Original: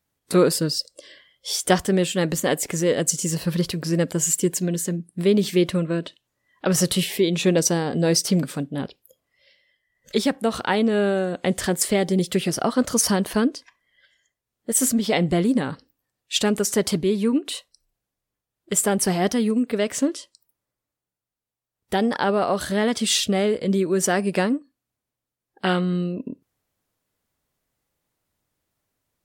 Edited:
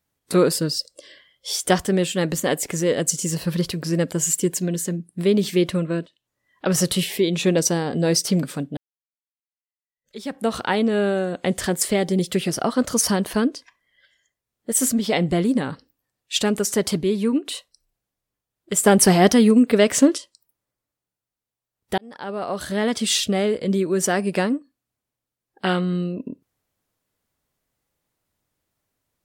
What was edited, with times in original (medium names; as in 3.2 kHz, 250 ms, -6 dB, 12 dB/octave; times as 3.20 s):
6.06–6.65 s: fade in equal-power, from -20 dB
8.77–10.42 s: fade in exponential
18.86–20.18 s: gain +7 dB
21.98–22.89 s: fade in